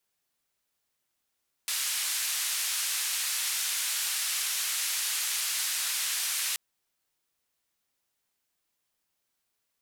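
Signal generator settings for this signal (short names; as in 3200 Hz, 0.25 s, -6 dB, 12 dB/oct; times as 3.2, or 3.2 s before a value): noise band 1700–12000 Hz, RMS -30.5 dBFS 4.88 s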